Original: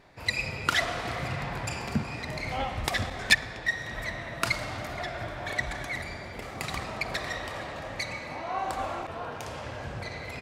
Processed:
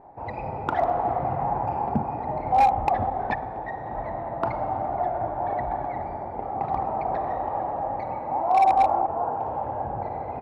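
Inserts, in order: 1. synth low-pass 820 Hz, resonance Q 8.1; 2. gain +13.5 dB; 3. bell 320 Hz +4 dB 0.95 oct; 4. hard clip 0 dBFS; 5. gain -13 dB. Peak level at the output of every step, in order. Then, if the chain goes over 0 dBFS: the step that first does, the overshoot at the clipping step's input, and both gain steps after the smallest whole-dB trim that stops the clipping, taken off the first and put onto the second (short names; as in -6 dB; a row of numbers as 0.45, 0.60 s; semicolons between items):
-7.0, +6.5, +7.0, 0.0, -13.0 dBFS; step 2, 7.0 dB; step 2 +6.5 dB, step 5 -6 dB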